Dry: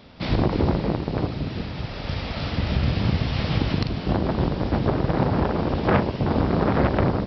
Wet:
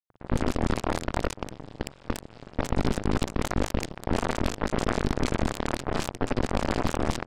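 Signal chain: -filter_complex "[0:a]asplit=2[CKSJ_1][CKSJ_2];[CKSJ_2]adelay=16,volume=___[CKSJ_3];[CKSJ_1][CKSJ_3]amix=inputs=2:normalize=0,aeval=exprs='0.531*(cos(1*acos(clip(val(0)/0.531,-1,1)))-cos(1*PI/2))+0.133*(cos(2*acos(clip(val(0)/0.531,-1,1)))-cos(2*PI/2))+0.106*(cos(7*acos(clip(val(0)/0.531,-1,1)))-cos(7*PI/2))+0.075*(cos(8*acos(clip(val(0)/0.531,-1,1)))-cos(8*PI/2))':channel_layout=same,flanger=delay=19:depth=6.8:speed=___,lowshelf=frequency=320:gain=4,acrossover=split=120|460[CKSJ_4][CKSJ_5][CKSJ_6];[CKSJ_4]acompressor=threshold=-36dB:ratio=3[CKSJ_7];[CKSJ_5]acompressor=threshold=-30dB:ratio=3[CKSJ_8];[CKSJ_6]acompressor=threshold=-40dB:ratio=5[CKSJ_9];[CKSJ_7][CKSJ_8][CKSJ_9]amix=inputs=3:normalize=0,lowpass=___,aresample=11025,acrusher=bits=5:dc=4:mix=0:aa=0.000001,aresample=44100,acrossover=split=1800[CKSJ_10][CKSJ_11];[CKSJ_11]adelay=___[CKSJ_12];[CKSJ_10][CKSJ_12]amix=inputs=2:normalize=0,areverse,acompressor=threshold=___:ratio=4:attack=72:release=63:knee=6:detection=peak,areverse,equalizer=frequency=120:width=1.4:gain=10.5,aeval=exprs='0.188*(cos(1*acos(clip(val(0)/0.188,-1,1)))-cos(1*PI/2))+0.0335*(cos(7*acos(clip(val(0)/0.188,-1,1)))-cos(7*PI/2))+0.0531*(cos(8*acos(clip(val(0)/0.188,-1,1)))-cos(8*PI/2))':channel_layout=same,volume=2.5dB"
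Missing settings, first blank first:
-11dB, 0.63, 3300, 60, -46dB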